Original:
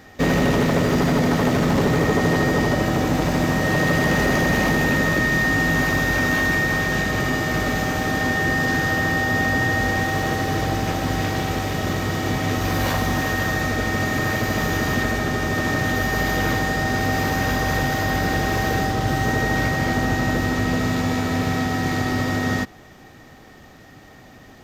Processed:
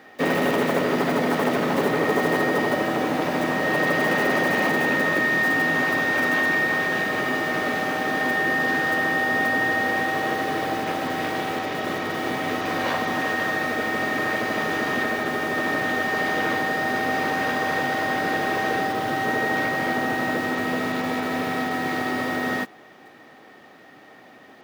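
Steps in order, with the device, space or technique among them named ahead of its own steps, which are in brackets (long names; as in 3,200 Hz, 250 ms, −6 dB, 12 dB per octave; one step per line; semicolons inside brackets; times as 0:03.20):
early digital voice recorder (band-pass filter 290–3,600 Hz; one scale factor per block 5 bits)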